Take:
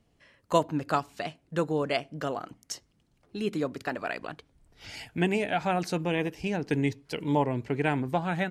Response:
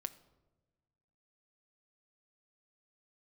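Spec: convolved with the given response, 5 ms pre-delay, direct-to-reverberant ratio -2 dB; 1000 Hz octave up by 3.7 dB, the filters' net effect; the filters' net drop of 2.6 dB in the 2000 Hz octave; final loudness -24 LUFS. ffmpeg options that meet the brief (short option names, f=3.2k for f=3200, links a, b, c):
-filter_complex "[0:a]equalizer=f=1k:t=o:g=6,equalizer=f=2k:t=o:g=-5.5,asplit=2[a][b];[1:a]atrim=start_sample=2205,adelay=5[c];[b][c]afir=irnorm=-1:irlink=0,volume=4.5dB[d];[a][d]amix=inputs=2:normalize=0,volume=1dB"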